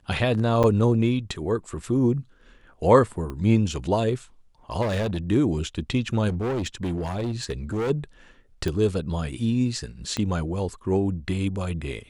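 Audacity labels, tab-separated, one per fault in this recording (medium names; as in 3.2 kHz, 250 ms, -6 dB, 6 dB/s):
0.630000	0.640000	dropout 7.2 ms
3.300000	3.300000	pop -21 dBFS
4.810000	5.180000	clipped -22 dBFS
6.280000	7.910000	clipped -23.5 dBFS
8.680000	8.680000	pop -15 dBFS
10.170000	10.170000	pop -14 dBFS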